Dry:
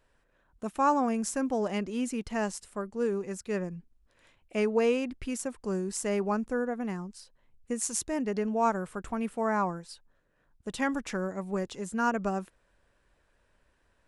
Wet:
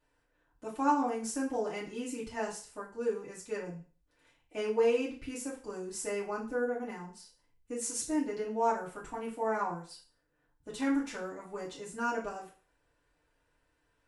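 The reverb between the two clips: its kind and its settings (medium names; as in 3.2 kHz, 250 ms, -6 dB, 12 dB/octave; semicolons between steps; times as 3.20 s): FDN reverb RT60 0.39 s, low-frequency decay 0.8×, high-frequency decay 1×, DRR -7 dB; trim -11.5 dB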